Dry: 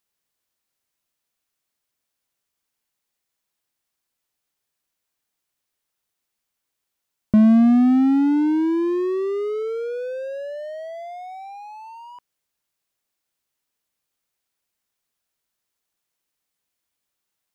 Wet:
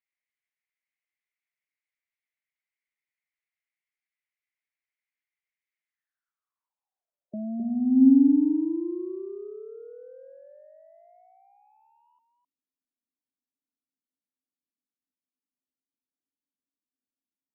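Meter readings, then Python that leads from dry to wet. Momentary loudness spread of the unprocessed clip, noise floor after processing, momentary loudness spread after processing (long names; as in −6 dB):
22 LU, below −85 dBFS, 23 LU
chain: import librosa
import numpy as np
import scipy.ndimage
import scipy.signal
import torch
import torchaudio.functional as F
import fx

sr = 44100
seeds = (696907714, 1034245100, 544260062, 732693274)

y = fx.spec_gate(x, sr, threshold_db=-25, keep='strong')
y = y + 10.0 ** (-7.5 / 20.0) * np.pad(y, (int(260 * sr / 1000.0), 0))[:len(y)]
y = fx.filter_sweep_bandpass(y, sr, from_hz=2100.0, to_hz=260.0, start_s=5.86, end_s=8.07, q=7.5)
y = F.gain(torch.from_numpy(y), 2.0).numpy()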